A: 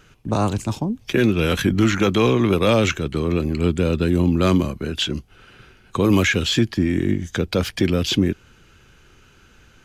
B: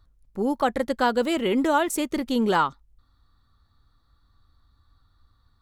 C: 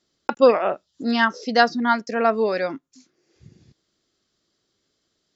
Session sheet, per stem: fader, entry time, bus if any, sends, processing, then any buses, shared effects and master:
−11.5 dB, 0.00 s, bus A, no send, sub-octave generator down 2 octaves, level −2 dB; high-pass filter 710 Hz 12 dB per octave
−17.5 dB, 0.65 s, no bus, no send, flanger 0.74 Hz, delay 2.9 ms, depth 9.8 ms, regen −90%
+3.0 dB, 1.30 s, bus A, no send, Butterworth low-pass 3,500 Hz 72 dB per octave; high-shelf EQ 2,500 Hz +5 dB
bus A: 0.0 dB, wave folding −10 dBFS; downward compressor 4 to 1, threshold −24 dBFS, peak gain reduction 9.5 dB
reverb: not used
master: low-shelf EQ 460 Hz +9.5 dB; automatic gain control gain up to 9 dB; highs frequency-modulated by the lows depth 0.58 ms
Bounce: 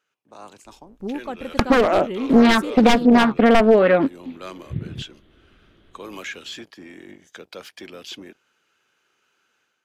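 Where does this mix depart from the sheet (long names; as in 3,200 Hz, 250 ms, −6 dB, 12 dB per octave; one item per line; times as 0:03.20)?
stem A −11.5 dB → −22.0 dB
stem B: missing flanger 0.74 Hz, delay 2.9 ms, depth 9.8 ms, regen −90%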